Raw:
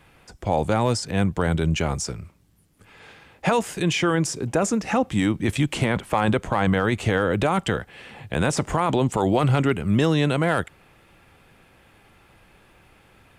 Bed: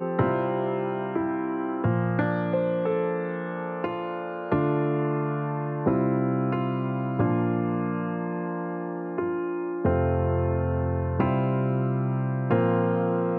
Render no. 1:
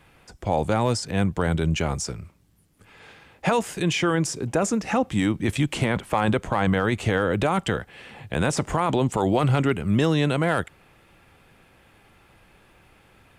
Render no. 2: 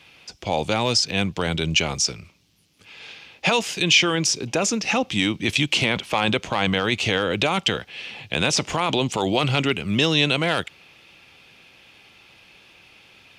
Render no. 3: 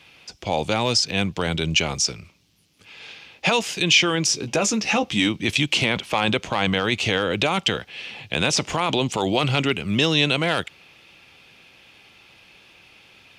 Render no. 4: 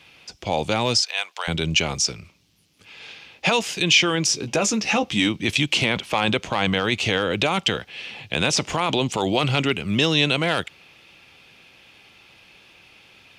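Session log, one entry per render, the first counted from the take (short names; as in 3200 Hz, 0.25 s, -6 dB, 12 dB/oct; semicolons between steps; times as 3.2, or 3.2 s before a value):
gain -1 dB
HPF 140 Hz 6 dB/oct; band shelf 3800 Hz +12.5 dB
4.28–5.29 doubler 14 ms -7 dB
1.02–1.48 HPF 730 Hz 24 dB/oct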